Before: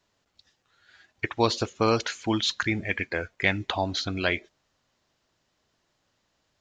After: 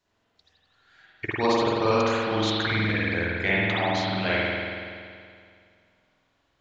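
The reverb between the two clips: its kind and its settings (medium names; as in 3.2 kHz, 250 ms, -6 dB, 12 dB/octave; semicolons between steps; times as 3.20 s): spring tank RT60 2.2 s, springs 47 ms, chirp 40 ms, DRR -8.5 dB; trim -5.5 dB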